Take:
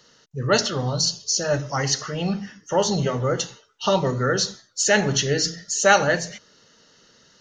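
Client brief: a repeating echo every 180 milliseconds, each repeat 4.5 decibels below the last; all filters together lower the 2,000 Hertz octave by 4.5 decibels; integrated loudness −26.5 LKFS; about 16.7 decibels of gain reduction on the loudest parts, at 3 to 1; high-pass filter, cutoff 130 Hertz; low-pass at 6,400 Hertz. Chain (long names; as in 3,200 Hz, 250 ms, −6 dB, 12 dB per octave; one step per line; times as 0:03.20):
high-pass filter 130 Hz
low-pass filter 6,400 Hz
parametric band 2,000 Hz −6 dB
downward compressor 3 to 1, threshold −36 dBFS
repeating echo 180 ms, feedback 60%, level −4.5 dB
level +7.5 dB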